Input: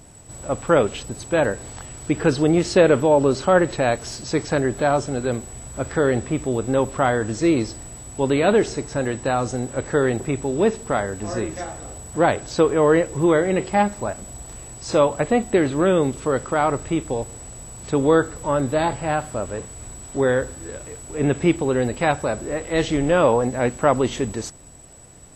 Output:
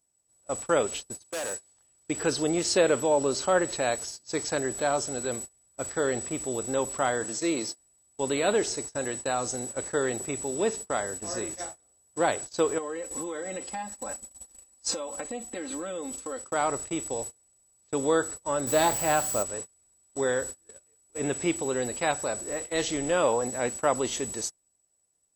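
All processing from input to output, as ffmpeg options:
ffmpeg -i in.wav -filter_complex "[0:a]asettb=1/sr,asplit=3[link_01][link_02][link_03];[link_01]atrim=end=1.244[link_04];[link_02]atrim=start=1.24:end=1.73,asetpts=PTS-STARTPTS,afade=type=in:duration=0.004:curve=qsin,afade=type=out:start_time=0.486:duration=0.004:curve=qsin,highshelf=frequency=3900:gain=8.5,acrossover=split=270|3500|7900[link_05][link_06][link_07][link_08];[link_05]acompressor=threshold=-37dB:ratio=3[link_09];[link_06]acompressor=threshold=-19dB:ratio=3[link_10];[link_07]acompressor=threshold=-39dB:ratio=3[link_11];[link_08]acompressor=threshold=-50dB:ratio=3[link_12];[link_09][link_10][link_11][link_12]amix=inputs=4:normalize=0,asoftclip=type=hard:threshold=-23.5dB[link_13];[link_03]atrim=start=1.726[link_14];[link_04][link_13]acrossfade=duration=0.004:curve1=hsin:curve2=qsin[link_15];[link_15][link_14]acrossfade=duration=0.004:curve1=qsin:curve2=hsin,asettb=1/sr,asplit=3[link_16][link_17][link_18];[link_16]atrim=end=7.244[link_19];[link_17]atrim=start=7.24:end=7.79,asetpts=PTS-STARTPTS,afade=type=in:duration=0.004:curve=qsin,afade=type=out:start_time=0.546:duration=0.004:curve=qsin,highpass=frequency=120:width=0.5412,highpass=frequency=120:width=1.3066,lowshelf=frequency=230:gain=-2.5,bandreject=frequency=60:width_type=h:width=6,bandreject=frequency=120:width_type=h:width=6,bandreject=frequency=180:width_type=h:width=6[link_20];[link_18]atrim=start=7.786[link_21];[link_19][link_20]acrossfade=duration=0.004:curve1=hsin:curve2=qsin[link_22];[link_22][link_21]acrossfade=duration=0.004:curve1=qsin:curve2=hsin,asettb=1/sr,asplit=3[link_23][link_24][link_25];[link_23]atrim=end=12.784[link_26];[link_24]atrim=start=12.78:end=16.44,asetpts=PTS-STARTPTS,afade=type=in:duration=0.004:curve=qsin,afade=type=out:start_time=3.656:duration=0.004:curve=qsin,aecho=1:1:3.8:0.97,atrim=end_sample=161406,acompressor=threshold=-23dB:ratio=10:attack=3.2:release=140:knee=1:detection=peak,bandreject=frequency=620:width=19[link_27];[link_25]atrim=start=16.436[link_28];[link_26][link_27]acrossfade=duration=0.004:curve1=hsin:curve2=qsin[link_29];[link_29][link_28]acrossfade=duration=0.004:curve1=qsin:curve2=hsin,asettb=1/sr,asplit=3[link_30][link_31][link_32];[link_30]atrim=end=18.674[link_33];[link_31]atrim=start=18.67:end=19.43,asetpts=PTS-STARTPTS,afade=type=in:duration=0.004:curve=qsin,afade=type=out:start_time=0.756:duration=0.004:curve=qsin,acontrast=34,acrusher=bits=7:dc=4:mix=0:aa=0.000001[link_34];[link_32]atrim=start=19.426[link_35];[link_33][link_34]acrossfade=duration=0.004:curve1=hsin:curve2=qsin[link_36];[link_36][link_35]acrossfade=duration=0.004:curve1=qsin:curve2=hsin,agate=range=-28dB:threshold=-30dB:ratio=16:detection=peak,bass=frequency=250:gain=-9,treble=frequency=4000:gain=12,volume=-7dB" out.wav

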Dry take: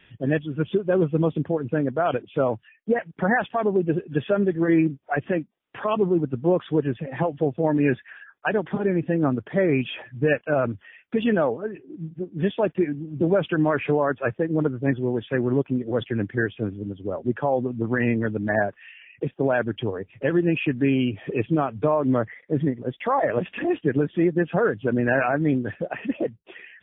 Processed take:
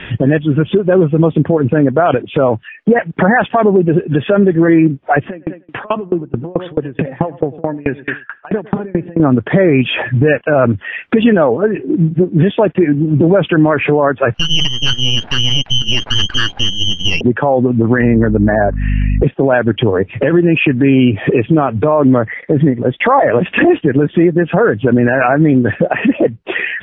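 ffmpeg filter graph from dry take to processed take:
ffmpeg -i in.wav -filter_complex "[0:a]asettb=1/sr,asplit=3[link_01][link_02][link_03];[link_01]atrim=end=5.254[link_04];[link_02]atrim=start=5.25:end=9.2,asetpts=PTS-STARTPTS,afade=type=in:duration=0.004:curve=qsin,afade=type=out:start_time=3.946:duration=0.004:curve=qsin,aecho=1:1:101|202|303:0.133|0.048|0.0173,atrim=end_sample=174195,acompressor=threshold=-33dB:ratio=5:attack=3.2:release=140:knee=1:detection=peak,aeval=exprs='val(0)*pow(10,-30*if(lt(mod(4.6*n/s,1),2*abs(4.6)/1000),1-mod(4.6*n/s,1)/(2*abs(4.6)/1000),(mod(4.6*n/s,1)-2*abs(4.6)/1000)/(1-2*abs(4.6)/1000))/20)':channel_layout=same[link_05];[link_03]atrim=start=9.196[link_06];[link_04][link_05]acrossfade=duration=0.004:curve1=hsin:curve2=qsin[link_07];[link_07][link_06]acrossfade=duration=0.004:curve1=qsin:curve2=hsin,asettb=1/sr,asplit=3[link_08][link_09][link_10];[link_08]atrim=end=14.344[link_11];[link_09]atrim=start=14.34:end=17.21,asetpts=PTS-STARTPTS,afade=type=in:duration=0.004:curve=qsin,afade=type=out:start_time=2.866:duration=0.004:curve=qsin,lowpass=frequency=2800:width_type=q:width=0.5098,lowpass=frequency=2800:width_type=q:width=0.6013,lowpass=frequency=2800:width_type=q:width=0.9,lowpass=frequency=2800:width_type=q:width=2.563,afreqshift=-3300,aeval=exprs='max(val(0),0)':channel_layout=same[link_12];[link_10]atrim=start=17.206[link_13];[link_11][link_12]acrossfade=duration=0.004:curve1=hsin:curve2=qsin[link_14];[link_14][link_13]acrossfade=duration=0.004:curve1=qsin:curve2=hsin,asettb=1/sr,asplit=3[link_15][link_16][link_17];[link_15]atrim=end=18.024[link_18];[link_16]atrim=start=18.02:end=19.24,asetpts=PTS-STARTPTS,afade=type=in:duration=0.004:curve=qsin,afade=type=out:start_time=1.216:duration=0.004:curve=qsin,lowpass=1600,aeval=exprs='val(0)+0.0178*(sin(2*PI*50*n/s)+sin(2*PI*2*50*n/s)/2+sin(2*PI*3*50*n/s)/3+sin(2*PI*4*50*n/s)/4+sin(2*PI*5*50*n/s)/5)':channel_layout=same[link_19];[link_17]atrim=start=19.236[link_20];[link_18][link_19]acrossfade=duration=0.004:curve1=hsin:curve2=qsin[link_21];[link_21][link_20]acrossfade=duration=0.004:curve1=qsin:curve2=hsin,lowpass=3000,acompressor=threshold=-39dB:ratio=2.5,alimiter=level_in=28.5dB:limit=-1dB:release=50:level=0:latency=1,volume=-1dB" out.wav

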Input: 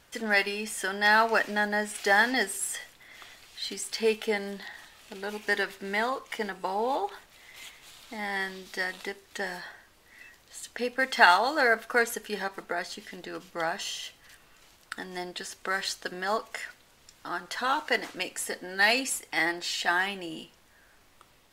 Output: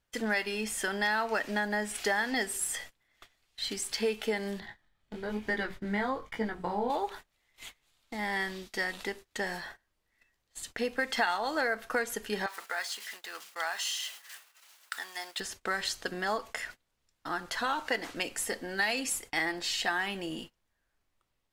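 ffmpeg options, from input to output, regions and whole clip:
ffmpeg -i in.wav -filter_complex "[0:a]asettb=1/sr,asplit=3[link_01][link_02][link_03];[link_01]atrim=end=4.604[link_04];[link_02]atrim=start=4.6:end=6.9,asetpts=PTS-STARTPTS,afade=type=in:duration=0.004:curve=qsin,afade=type=out:start_time=2.296:duration=0.004:curve=qsin,bass=frequency=250:gain=10,treble=frequency=4000:gain=-9,flanger=delay=18:depth=6.6:speed=1.1,bandreject=frequency=2700:width=9.1[link_05];[link_03]atrim=start=6.896[link_06];[link_04][link_05]acrossfade=duration=0.004:curve1=hsin:curve2=qsin[link_07];[link_07][link_06]acrossfade=duration=0.004:curve1=qsin:curve2=hsin,asettb=1/sr,asplit=3[link_08][link_09][link_10];[link_08]atrim=end=12.464[link_11];[link_09]atrim=start=12.46:end=15.4,asetpts=PTS-STARTPTS,afade=type=in:duration=0.004:curve=qsin,afade=type=out:start_time=2.936:duration=0.004:curve=qsin,aeval=exprs='val(0)+0.5*0.00668*sgn(val(0))':channel_layout=same,highpass=1000,adynamicequalizer=threshold=0.00316:dfrequency=6400:dqfactor=0.7:tfrequency=6400:tqfactor=0.7:attack=5:release=100:ratio=0.375:range=1.5:mode=boostabove:tftype=highshelf[link_12];[link_10]atrim=start=15.396[link_13];[link_11][link_12]acrossfade=duration=0.004:curve1=hsin:curve2=qsin[link_14];[link_14][link_13]acrossfade=duration=0.004:curve1=qsin:curve2=hsin,acompressor=threshold=-27dB:ratio=4,agate=range=-22dB:threshold=-45dB:ratio=16:detection=peak,lowshelf=frequency=110:gain=9" out.wav

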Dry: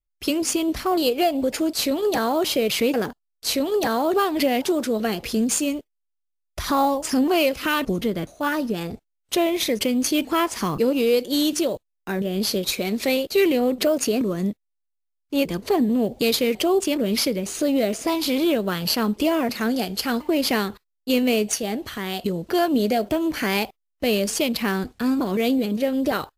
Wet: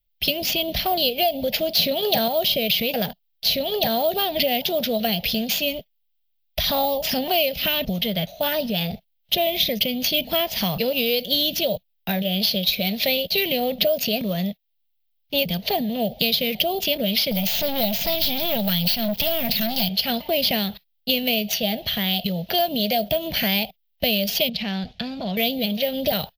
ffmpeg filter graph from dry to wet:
ffmpeg -i in.wav -filter_complex "[0:a]asettb=1/sr,asplit=3[link_01][link_02][link_03];[link_01]atrim=end=1.744[link_04];[link_02]atrim=start=1.74:end=2.28,asetpts=PTS-STARTPTS,afade=type=in:duration=0.004:curve=qsin,afade=type=out:start_time=0.536:duration=0.004:curve=qsin,highpass=110,acontrast=30[link_05];[link_03]atrim=start=2.276[link_06];[link_04][link_05]acrossfade=duration=0.004:curve1=hsin:curve2=qsin[link_07];[link_07][link_06]acrossfade=duration=0.004:curve1=qsin:curve2=hsin,asettb=1/sr,asplit=3[link_08][link_09][link_10];[link_08]atrim=end=17.314[link_11];[link_09]atrim=start=17.31:end=19.89,asetpts=PTS-STARTPTS,afade=type=in:duration=0.004:curve=qsin,afade=type=out:start_time=2.576:duration=0.004:curve=qsin,bass=frequency=250:gain=14,treble=frequency=4000:gain=15,acrusher=bits=8:dc=4:mix=0:aa=0.000001,aeval=exprs='(tanh(8.91*val(0)+0.45)-tanh(0.45))/8.91':channel_layout=same[link_12];[link_10]atrim=start=19.886[link_13];[link_11][link_12]acrossfade=duration=0.004:curve1=hsin:curve2=qsin[link_14];[link_14][link_13]acrossfade=duration=0.004:curve1=qsin:curve2=hsin,asettb=1/sr,asplit=3[link_15][link_16][link_17];[link_15]atrim=end=24.494[link_18];[link_16]atrim=start=24.49:end=25.37,asetpts=PTS-STARTPTS,afade=type=in:duration=0.004:curve=qsin,afade=type=out:start_time=0.876:duration=0.004:curve=qsin,lowpass=frequency=8800:width=0.5412,lowpass=frequency=8800:width=1.3066,acompressor=threshold=-31dB:ratio=2.5:attack=3.2:release=140:knee=1:detection=peak[link_19];[link_17]atrim=start=25.366[link_20];[link_18][link_19]acrossfade=duration=0.004:curve1=hsin:curve2=qsin[link_21];[link_21][link_20]acrossfade=duration=0.004:curve1=qsin:curve2=hsin,firequalizer=gain_entry='entry(110,0);entry(180,7);entry(300,-17);entry(640,5);entry(1100,-15);entry(1900,-2);entry(3200,10);entry(5400,-1);entry(8200,-23);entry(14000,12)':delay=0.05:min_phase=1,acrossover=split=480|4700[link_22][link_23][link_24];[link_22]acompressor=threshold=-34dB:ratio=4[link_25];[link_23]acompressor=threshold=-31dB:ratio=4[link_26];[link_24]acompressor=threshold=-32dB:ratio=4[link_27];[link_25][link_26][link_27]amix=inputs=3:normalize=0,volume=7dB" out.wav

